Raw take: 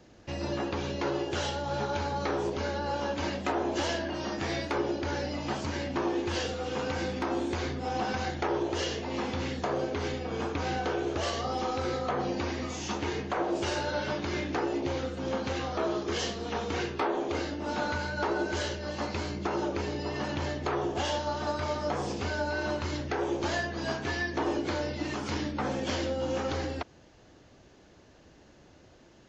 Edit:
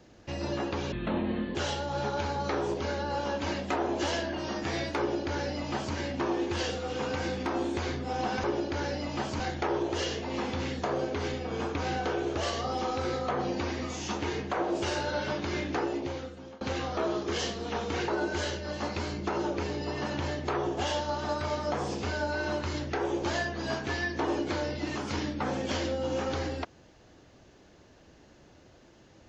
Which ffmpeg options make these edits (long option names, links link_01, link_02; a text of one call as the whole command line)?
ffmpeg -i in.wav -filter_complex "[0:a]asplit=7[link_01][link_02][link_03][link_04][link_05][link_06][link_07];[link_01]atrim=end=0.924[link_08];[link_02]atrim=start=0.92:end=1.31,asetpts=PTS-STARTPTS,asetrate=27342,aresample=44100,atrim=end_sample=27740,asetpts=PTS-STARTPTS[link_09];[link_03]atrim=start=1.306:end=8.202[link_10];[link_04]atrim=start=4.748:end=5.712[link_11];[link_05]atrim=start=8.198:end=15.41,asetpts=PTS-STARTPTS,afade=type=out:start_time=6.412:duration=0.8:silence=0.0668344[link_12];[link_06]atrim=start=15.41:end=16.882,asetpts=PTS-STARTPTS,afade=type=in:duration=0.004:curve=hsin:silence=0.0668344[link_13];[link_07]atrim=start=18.258[link_14];[link_08][link_09]acrossfade=duration=0.004:curve1=hsin:curve2=hsin[link_15];[link_15][link_10]acrossfade=duration=0.004:curve1=hsin:curve2=hsin[link_16];[link_16][link_11]acrossfade=duration=0.004:curve1=hsin:curve2=hsin[link_17];[link_12][link_13]concat=n=2:v=0:a=1[link_18];[link_17][link_18]acrossfade=duration=0.004:curve1=hsin:curve2=hsin[link_19];[link_19][link_14]acrossfade=duration=0.004:curve1=hsin:curve2=hsin" out.wav